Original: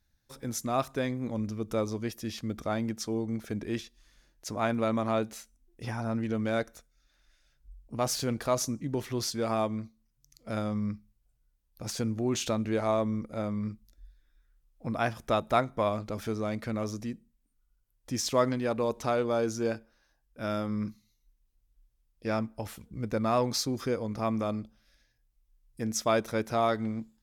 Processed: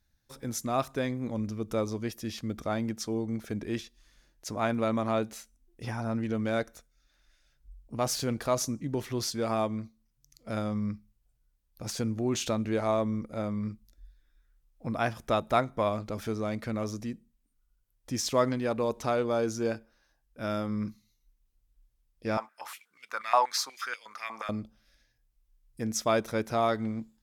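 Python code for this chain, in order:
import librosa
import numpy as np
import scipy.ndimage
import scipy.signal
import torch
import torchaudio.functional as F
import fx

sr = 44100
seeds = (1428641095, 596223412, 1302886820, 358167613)

y = fx.filter_held_highpass(x, sr, hz=8.3, low_hz=870.0, high_hz=2700.0, at=(22.37, 24.49))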